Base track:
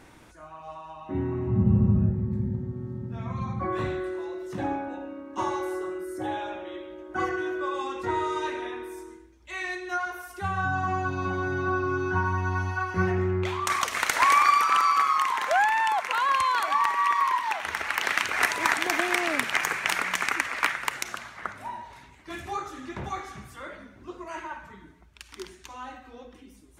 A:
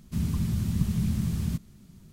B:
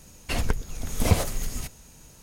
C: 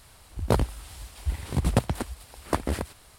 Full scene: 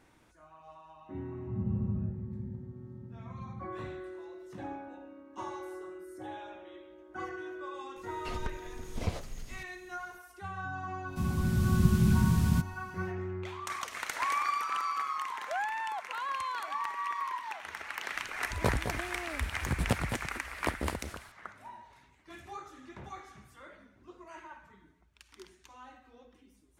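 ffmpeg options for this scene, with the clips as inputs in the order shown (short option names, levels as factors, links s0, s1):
-filter_complex "[0:a]volume=0.266[s0];[2:a]acrossover=split=6100[s1][s2];[s2]acompressor=threshold=0.00355:ratio=4:attack=1:release=60[s3];[s1][s3]amix=inputs=2:normalize=0[s4];[1:a]dynaudnorm=f=150:g=7:m=2.24[s5];[3:a]aecho=1:1:212:0.398[s6];[s4]atrim=end=2.22,asetpts=PTS-STARTPTS,volume=0.237,afade=t=in:d=0.004:c=hsin,afade=t=out:st=2.216:d=0.004:c=hsin,adelay=7960[s7];[s5]atrim=end=2.12,asetpts=PTS-STARTPTS,volume=0.596,afade=t=in:d=0.1,afade=t=out:st=2.02:d=0.1,adelay=11040[s8];[s6]atrim=end=3.18,asetpts=PTS-STARTPTS,volume=0.447,afade=t=in:d=0.004:c=hsin,afade=t=out:st=3.176:d=0.004:c=hsin,adelay=18140[s9];[s0][s7][s8][s9]amix=inputs=4:normalize=0"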